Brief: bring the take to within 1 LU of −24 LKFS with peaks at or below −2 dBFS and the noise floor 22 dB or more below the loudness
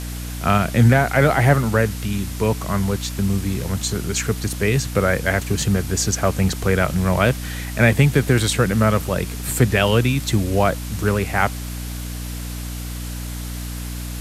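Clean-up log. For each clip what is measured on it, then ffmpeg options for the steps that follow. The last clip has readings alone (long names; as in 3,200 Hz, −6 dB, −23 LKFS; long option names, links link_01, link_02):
mains hum 60 Hz; hum harmonics up to 300 Hz; level of the hum −27 dBFS; background noise floor −29 dBFS; target noise floor −42 dBFS; integrated loudness −20.0 LKFS; sample peak −3.0 dBFS; target loudness −24.0 LKFS
→ -af "bandreject=frequency=60:width_type=h:width=4,bandreject=frequency=120:width_type=h:width=4,bandreject=frequency=180:width_type=h:width=4,bandreject=frequency=240:width_type=h:width=4,bandreject=frequency=300:width_type=h:width=4"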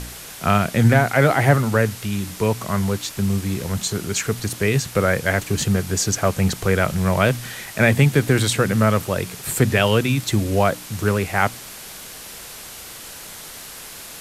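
mains hum none found; background noise floor −37 dBFS; target noise floor −42 dBFS
→ -af "afftdn=noise_reduction=6:noise_floor=-37"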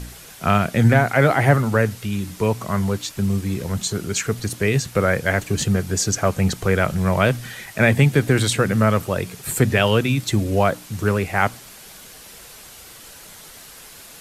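background noise floor −42 dBFS; integrated loudness −20.0 LKFS; sample peak −2.5 dBFS; target loudness −24.0 LKFS
→ -af "volume=-4dB"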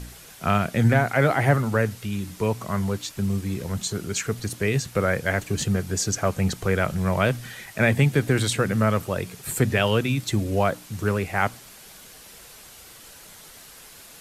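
integrated loudness −24.0 LKFS; sample peak −6.5 dBFS; background noise floor −46 dBFS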